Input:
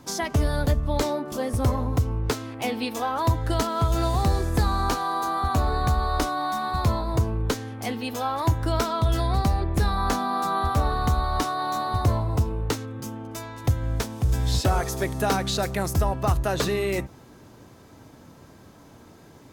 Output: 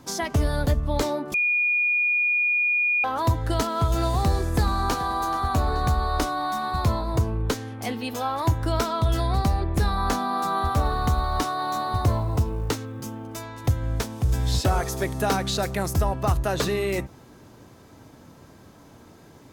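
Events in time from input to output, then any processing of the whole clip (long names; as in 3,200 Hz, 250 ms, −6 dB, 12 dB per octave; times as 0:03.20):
0:01.34–0:03.04: beep over 2,440 Hz −19 dBFS
0:04.24–0:05.00: delay throw 430 ms, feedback 50%, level −15 dB
0:10.38–0:13.37: log-companded quantiser 8 bits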